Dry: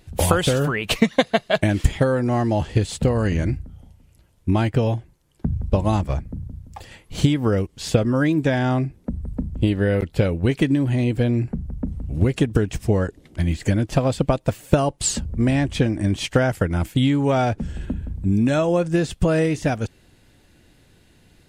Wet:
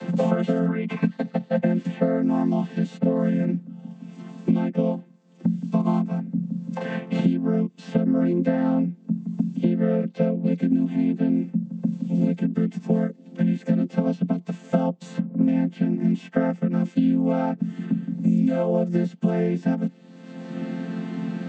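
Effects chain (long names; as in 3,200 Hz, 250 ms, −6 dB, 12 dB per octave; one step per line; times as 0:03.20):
channel vocoder with a chord as carrier major triad, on F3
harmonic and percussive parts rebalanced percussive −14 dB
multiband upward and downward compressor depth 100%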